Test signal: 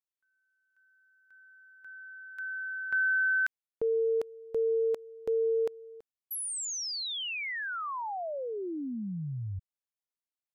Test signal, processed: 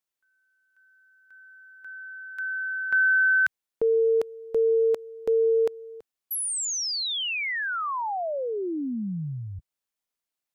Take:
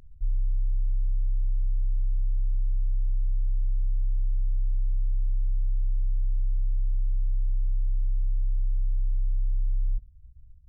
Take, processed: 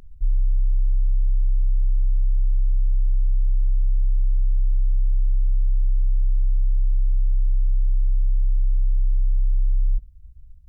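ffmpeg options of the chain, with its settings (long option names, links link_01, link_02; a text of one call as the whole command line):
ffmpeg -i in.wav -af "equalizer=frequency=100:width_type=o:width=0.82:gain=-7,volume=6.5dB" out.wav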